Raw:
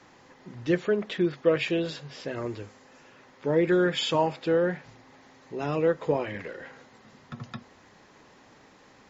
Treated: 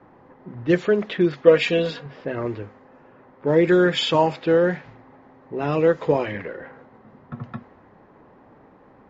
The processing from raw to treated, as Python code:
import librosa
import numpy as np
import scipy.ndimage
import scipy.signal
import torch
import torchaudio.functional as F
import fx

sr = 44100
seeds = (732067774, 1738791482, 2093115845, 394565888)

y = fx.env_lowpass(x, sr, base_hz=1000.0, full_db=-20.0)
y = fx.comb(y, sr, ms=4.2, depth=0.67, at=(1.47, 2.06))
y = y * librosa.db_to_amplitude(6.0)